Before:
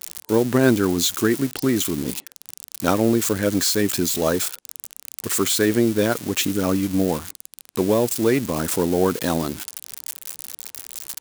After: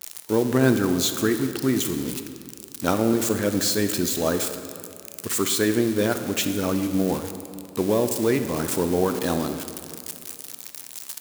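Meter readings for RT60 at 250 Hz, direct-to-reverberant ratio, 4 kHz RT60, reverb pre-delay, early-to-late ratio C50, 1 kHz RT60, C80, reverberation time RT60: 2.7 s, 7.5 dB, 1.6 s, 22 ms, 8.5 dB, 2.5 s, 9.5 dB, 2.5 s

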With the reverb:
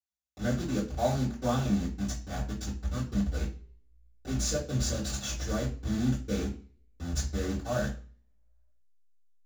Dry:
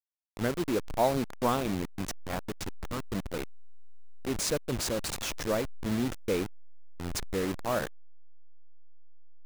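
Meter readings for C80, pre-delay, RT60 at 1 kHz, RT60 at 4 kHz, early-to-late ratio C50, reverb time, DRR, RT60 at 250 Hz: 14.5 dB, 3 ms, 0.40 s, 0.40 s, 9.5 dB, 0.45 s, -11.5 dB, 0.40 s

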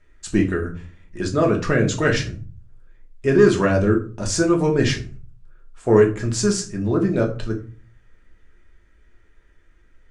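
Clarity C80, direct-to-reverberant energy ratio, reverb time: 17.0 dB, 0.5 dB, 0.40 s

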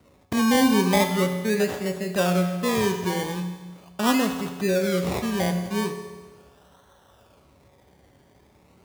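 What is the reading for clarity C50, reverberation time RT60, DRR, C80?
7.5 dB, 1.4 s, 5.0 dB, 9.0 dB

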